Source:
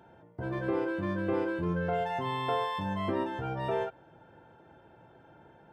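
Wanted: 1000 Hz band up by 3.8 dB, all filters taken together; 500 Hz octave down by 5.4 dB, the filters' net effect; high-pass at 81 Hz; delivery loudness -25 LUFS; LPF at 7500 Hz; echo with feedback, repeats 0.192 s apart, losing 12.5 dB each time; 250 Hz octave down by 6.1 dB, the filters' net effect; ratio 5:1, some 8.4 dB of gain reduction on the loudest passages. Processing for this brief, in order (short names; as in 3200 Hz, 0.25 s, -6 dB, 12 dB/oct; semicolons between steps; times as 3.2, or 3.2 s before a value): HPF 81 Hz; LPF 7500 Hz; bell 250 Hz -7 dB; bell 500 Hz -7.5 dB; bell 1000 Hz +7 dB; compressor 5:1, threshold -34 dBFS; feedback echo 0.192 s, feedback 24%, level -12.5 dB; gain +12.5 dB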